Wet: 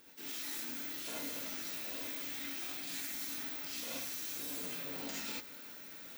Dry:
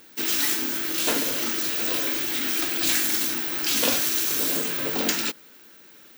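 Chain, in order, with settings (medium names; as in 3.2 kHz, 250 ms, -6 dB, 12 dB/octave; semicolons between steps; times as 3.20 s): reverse; compression 8:1, threshold -39 dBFS, peak gain reduction 20.5 dB; reverse; gated-style reverb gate 100 ms rising, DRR -5 dB; trim -6 dB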